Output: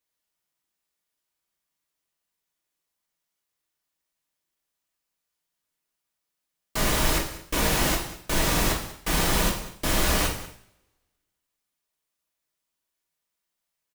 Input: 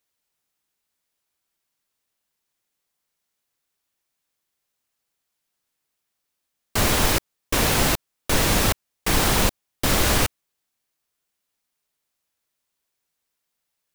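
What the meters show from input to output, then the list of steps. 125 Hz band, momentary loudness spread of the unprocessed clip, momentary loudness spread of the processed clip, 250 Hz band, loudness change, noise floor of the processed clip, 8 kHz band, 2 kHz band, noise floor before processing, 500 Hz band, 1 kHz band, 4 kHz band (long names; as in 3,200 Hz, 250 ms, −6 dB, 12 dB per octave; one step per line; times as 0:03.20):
−4.0 dB, 8 LU, 7 LU, −3.0 dB, −3.5 dB, −83 dBFS, −3.5 dB, −3.0 dB, −80 dBFS, −3.5 dB, −3.5 dB, −3.5 dB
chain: single-tap delay 193 ms −17 dB
coupled-rooms reverb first 0.57 s, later 1.6 s, from −28 dB, DRR −1 dB
level −7 dB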